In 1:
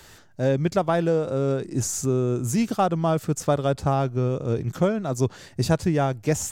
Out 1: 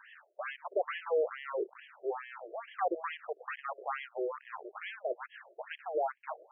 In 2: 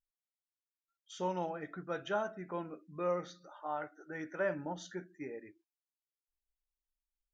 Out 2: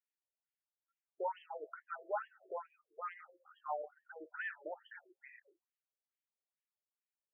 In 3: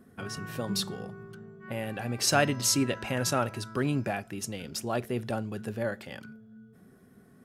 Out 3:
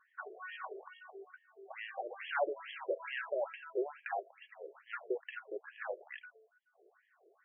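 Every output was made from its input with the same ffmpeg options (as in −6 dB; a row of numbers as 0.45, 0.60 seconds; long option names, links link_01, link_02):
-af "asoftclip=type=hard:threshold=-25.5dB,afftfilt=real='re*between(b*sr/1024,470*pow(2400/470,0.5+0.5*sin(2*PI*2.3*pts/sr))/1.41,470*pow(2400/470,0.5+0.5*sin(2*PI*2.3*pts/sr))*1.41)':imag='im*between(b*sr/1024,470*pow(2400/470,0.5+0.5*sin(2*PI*2.3*pts/sr))/1.41,470*pow(2400/470,0.5+0.5*sin(2*PI*2.3*pts/sr))*1.41)':win_size=1024:overlap=0.75,volume=1dB"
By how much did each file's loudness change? −13.5, −5.0, −11.0 LU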